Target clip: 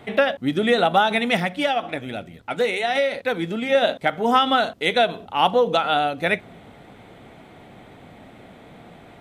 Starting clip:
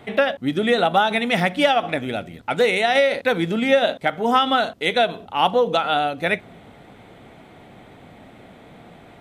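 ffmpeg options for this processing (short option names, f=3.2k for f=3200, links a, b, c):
-filter_complex "[0:a]asettb=1/sr,asplit=3[a][b][c];[a]atrim=end=1.374[d];[b]atrim=start=1.37:end=3.75,asetpts=PTS-STARTPTS,afade=t=in:d=0.004:c=qsin,afade=t=out:st=2.376:d=0.004:c=qsin,flanger=delay=0.2:depth=3.8:regen=-61:speed=1.2:shape=triangular[e];[c]atrim=start=3.746[f];[d][e]acrossfade=d=0.004:c1=hsin:c2=qsin[g];[g][f]acrossfade=d=0.004:c1=qsin:c2=hsin"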